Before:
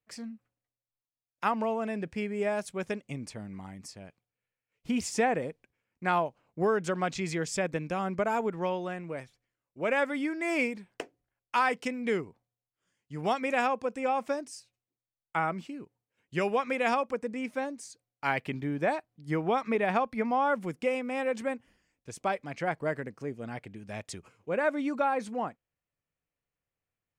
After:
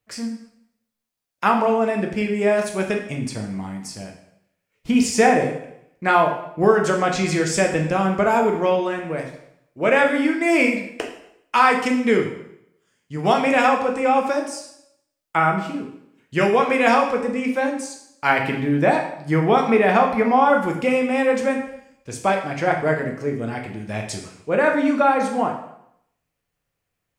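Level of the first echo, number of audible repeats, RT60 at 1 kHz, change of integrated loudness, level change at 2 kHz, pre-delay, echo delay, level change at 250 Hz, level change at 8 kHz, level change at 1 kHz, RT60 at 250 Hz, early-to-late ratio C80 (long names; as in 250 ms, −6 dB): no echo audible, no echo audible, 0.75 s, +11.5 dB, +11.0 dB, 4 ms, no echo audible, +12.0 dB, +11.0 dB, +11.0 dB, 0.80 s, 10.0 dB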